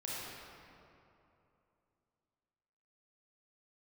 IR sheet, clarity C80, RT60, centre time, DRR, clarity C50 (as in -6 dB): -2.5 dB, 2.9 s, 176 ms, -7.0 dB, -4.5 dB